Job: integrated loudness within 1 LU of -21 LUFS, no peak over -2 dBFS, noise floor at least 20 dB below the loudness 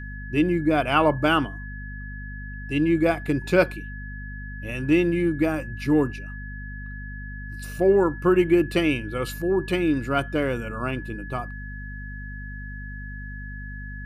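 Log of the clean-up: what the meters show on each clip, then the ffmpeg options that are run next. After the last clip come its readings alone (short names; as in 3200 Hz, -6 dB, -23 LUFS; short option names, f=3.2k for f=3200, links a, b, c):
hum 50 Hz; harmonics up to 250 Hz; hum level -33 dBFS; steady tone 1700 Hz; tone level -39 dBFS; loudness -23.0 LUFS; peak -6.5 dBFS; loudness target -21.0 LUFS
-> -af "bandreject=f=50:t=h:w=4,bandreject=f=100:t=h:w=4,bandreject=f=150:t=h:w=4,bandreject=f=200:t=h:w=4,bandreject=f=250:t=h:w=4"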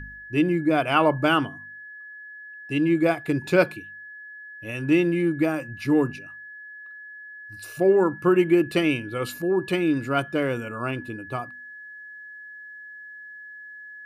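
hum none; steady tone 1700 Hz; tone level -39 dBFS
-> -af "bandreject=f=1.7k:w=30"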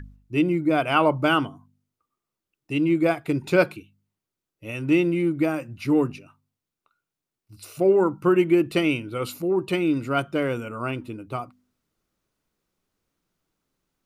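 steady tone none; loudness -23.0 LUFS; peak -6.5 dBFS; loudness target -21.0 LUFS
-> -af "volume=2dB"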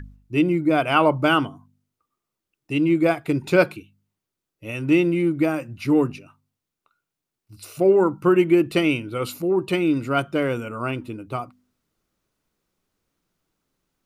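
loudness -21.0 LUFS; peak -4.5 dBFS; noise floor -85 dBFS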